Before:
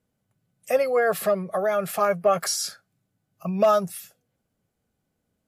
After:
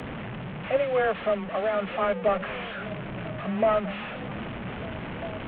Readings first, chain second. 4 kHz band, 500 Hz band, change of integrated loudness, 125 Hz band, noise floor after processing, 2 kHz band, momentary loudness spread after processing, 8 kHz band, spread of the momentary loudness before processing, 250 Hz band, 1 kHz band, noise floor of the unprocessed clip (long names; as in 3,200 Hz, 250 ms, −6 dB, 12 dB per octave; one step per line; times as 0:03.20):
−5.5 dB, −3.0 dB, −5.5 dB, +2.0 dB, −36 dBFS, +0.5 dB, 11 LU, below −40 dB, 12 LU, +1.0 dB, −3.0 dB, −78 dBFS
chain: linear delta modulator 16 kbit/s, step −26.5 dBFS
frequency shifter +14 Hz
echo through a band-pass that steps 399 ms, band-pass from 150 Hz, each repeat 0.7 octaves, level −7 dB
level −3 dB